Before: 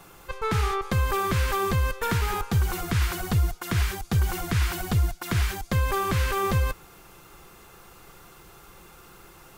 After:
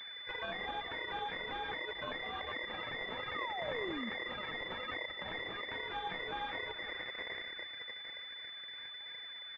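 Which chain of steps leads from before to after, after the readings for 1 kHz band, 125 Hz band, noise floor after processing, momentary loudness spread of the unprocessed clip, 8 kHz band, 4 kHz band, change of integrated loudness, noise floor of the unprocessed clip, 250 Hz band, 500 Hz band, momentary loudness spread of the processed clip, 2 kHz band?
-11.5 dB, -32.5 dB, -48 dBFS, 2 LU, under -35 dB, -3.0 dB, -14.0 dB, -51 dBFS, -16.0 dB, -11.5 dB, 6 LU, -5.5 dB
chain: octave divider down 1 oct, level -5 dB; Schroeder reverb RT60 4 s, combs from 32 ms, DRR 12.5 dB; level-controlled noise filter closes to 390 Hz, open at -19 dBFS; de-hum 231.3 Hz, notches 31; on a send: early reflections 16 ms -10 dB, 80 ms -15.5 dB; on the sum: ring modulator 2 kHz; flange 1.2 Hz, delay 1.7 ms, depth 5.7 ms, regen +25%; compression 8:1, threshold -40 dBFS, peak gain reduction 19 dB; peak limiter -39 dBFS, peak gain reduction 11.5 dB; reverb removal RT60 0.63 s; painted sound fall, 3.34–4.10 s, 210–1300 Hz -55 dBFS; class-D stage that switches slowly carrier 3.5 kHz; trim +14 dB

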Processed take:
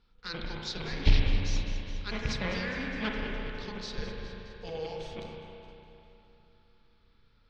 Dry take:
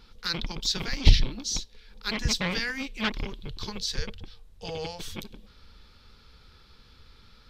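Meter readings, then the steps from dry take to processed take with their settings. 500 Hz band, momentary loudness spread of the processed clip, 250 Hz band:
+0.5 dB, 16 LU, -2.0 dB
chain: rattle on loud lows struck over -18 dBFS, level -14 dBFS; echo whose repeats swap between lows and highs 103 ms, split 2.1 kHz, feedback 80%, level -10 dB; dynamic bell 500 Hz, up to +4 dB, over -47 dBFS, Q 1.4; gate -44 dBFS, range -8 dB; distance through air 120 m; spring tank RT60 3 s, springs 32/38 ms, chirp 70 ms, DRR 0 dB; trim -6.5 dB

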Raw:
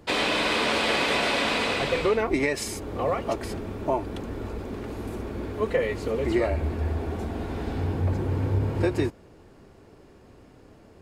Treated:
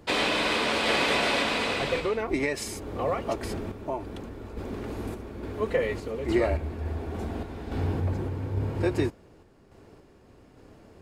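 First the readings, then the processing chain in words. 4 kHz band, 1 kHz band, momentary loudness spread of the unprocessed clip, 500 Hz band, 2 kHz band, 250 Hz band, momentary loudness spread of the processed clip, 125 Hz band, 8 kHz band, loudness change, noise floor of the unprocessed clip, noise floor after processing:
-1.0 dB, -2.0 dB, 12 LU, -2.0 dB, -1.5 dB, -2.0 dB, 12 LU, -3.0 dB, -2.0 dB, -2.0 dB, -52 dBFS, -55 dBFS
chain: random-step tremolo

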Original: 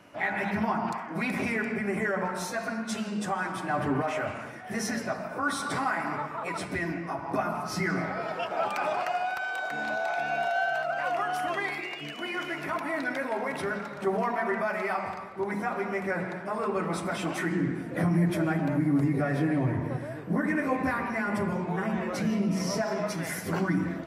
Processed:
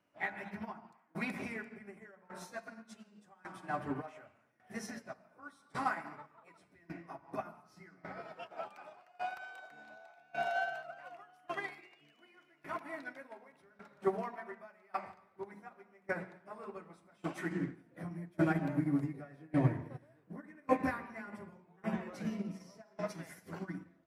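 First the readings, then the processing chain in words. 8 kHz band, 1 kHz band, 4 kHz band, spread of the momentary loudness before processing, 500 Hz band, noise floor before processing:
-17.5 dB, -12.0 dB, -16.0 dB, 6 LU, -11.5 dB, -39 dBFS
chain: hum notches 50/100 Hz; tremolo saw down 0.87 Hz, depth 80%; upward expansion 2.5:1, over -40 dBFS; trim +1 dB

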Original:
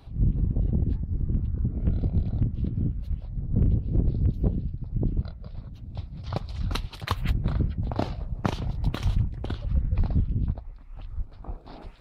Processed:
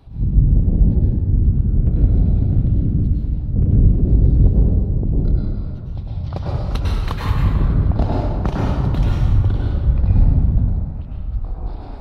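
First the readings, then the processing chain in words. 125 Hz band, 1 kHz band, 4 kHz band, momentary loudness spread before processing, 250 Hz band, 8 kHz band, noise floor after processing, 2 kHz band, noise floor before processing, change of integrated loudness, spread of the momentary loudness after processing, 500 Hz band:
+10.5 dB, +7.0 dB, +2.0 dB, 13 LU, +9.5 dB, no reading, -29 dBFS, +5.0 dB, -44 dBFS, +10.0 dB, 12 LU, +9.0 dB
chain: tilt shelf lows +3 dB; plate-style reverb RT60 2 s, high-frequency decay 0.5×, pre-delay 90 ms, DRR -5.5 dB

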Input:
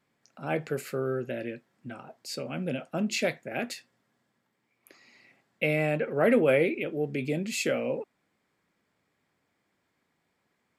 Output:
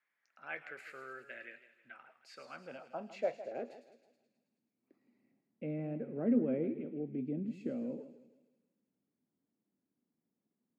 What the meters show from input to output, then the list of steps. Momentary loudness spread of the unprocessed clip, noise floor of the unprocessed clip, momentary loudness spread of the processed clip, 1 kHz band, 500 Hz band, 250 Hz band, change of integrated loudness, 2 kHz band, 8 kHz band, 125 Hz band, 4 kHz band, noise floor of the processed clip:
18 LU, -77 dBFS, 23 LU, -12.0 dB, -12.5 dB, -5.5 dB, -10.0 dB, -15.5 dB, under -25 dB, -11.5 dB, under -20 dB, under -85 dBFS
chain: band-pass sweep 1.8 kHz -> 240 Hz, 2.15–4.36 s; feedback echo behind a high-pass 107 ms, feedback 68%, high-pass 4.6 kHz, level -6 dB; modulated delay 159 ms, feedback 37%, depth 109 cents, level -14 dB; trim -2.5 dB

